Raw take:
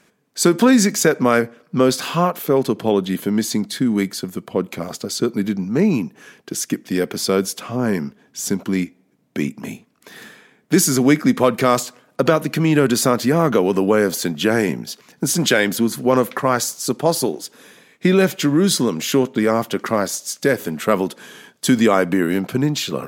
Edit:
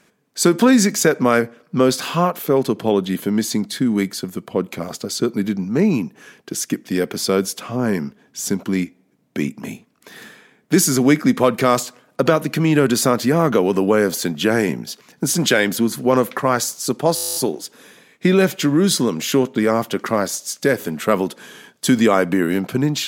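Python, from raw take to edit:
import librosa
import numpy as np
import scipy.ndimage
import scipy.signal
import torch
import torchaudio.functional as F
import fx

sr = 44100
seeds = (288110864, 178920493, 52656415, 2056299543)

y = fx.edit(x, sr, fx.stutter(start_s=17.15, slice_s=0.02, count=11), tone=tone)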